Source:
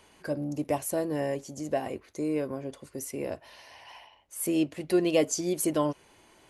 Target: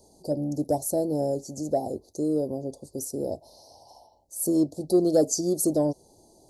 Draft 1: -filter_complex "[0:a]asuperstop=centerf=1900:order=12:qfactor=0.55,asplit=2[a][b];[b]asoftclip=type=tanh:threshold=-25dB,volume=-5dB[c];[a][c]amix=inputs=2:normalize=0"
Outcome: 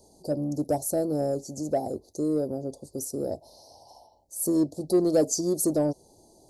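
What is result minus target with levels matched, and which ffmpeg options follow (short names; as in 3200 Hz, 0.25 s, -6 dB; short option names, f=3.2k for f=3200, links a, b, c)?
soft clip: distortion +12 dB
-filter_complex "[0:a]asuperstop=centerf=1900:order=12:qfactor=0.55,asplit=2[a][b];[b]asoftclip=type=tanh:threshold=-16dB,volume=-5dB[c];[a][c]amix=inputs=2:normalize=0"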